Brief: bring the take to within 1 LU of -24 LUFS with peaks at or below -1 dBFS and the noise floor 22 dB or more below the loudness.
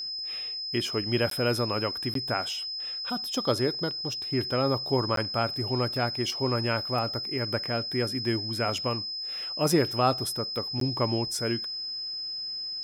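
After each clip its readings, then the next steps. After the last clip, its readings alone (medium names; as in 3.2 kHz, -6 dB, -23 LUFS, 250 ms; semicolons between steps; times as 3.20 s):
dropouts 4; longest dropout 13 ms; steady tone 5.1 kHz; tone level -32 dBFS; loudness -28.0 LUFS; peak level -10.0 dBFS; loudness target -24.0 LUFS
-> interpolate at 1.30/2.14/5.16/10.80 s, 13 ms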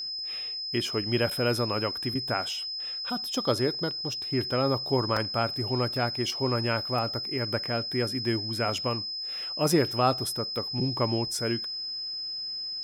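dropouts 0; steady tone 5.1 kHz; tone level -32 dBFS
-> band-stop 5.1 kHz, Q 30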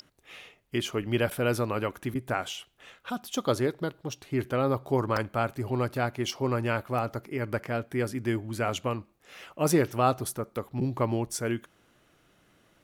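steady tone not found; loudness -30.0 LUFS; peak level -10.5 dBFS; loudness target -24.0 LUFS
-> trim +6 dB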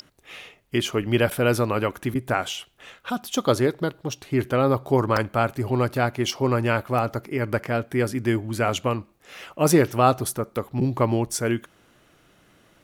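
loudness -24.0 LUFS; peak level -4.5 dBFS; noise floor -59 dBFS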